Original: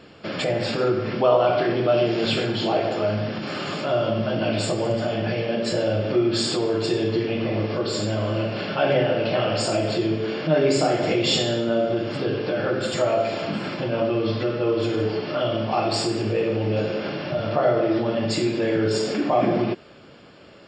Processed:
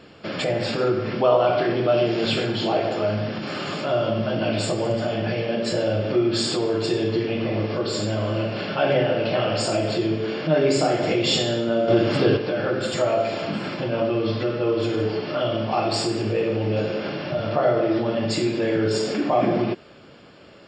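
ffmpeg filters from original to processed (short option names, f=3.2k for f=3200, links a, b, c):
-filter_complex "[0:a]asplit=3[a][b][c];[a]atrim=end=11.882[d];[b]atrim=start=11.878:end=12.372,asetpts=PTS-STARTPTS,volume=6.5dB[e];[c]atrim=start=12.368[f];[d][e]acrossfade=d=0.004:c1=hsin:c2=hsin[g];[g][f]acrossfade=d=0.004:c1=hsin:c2=hsin"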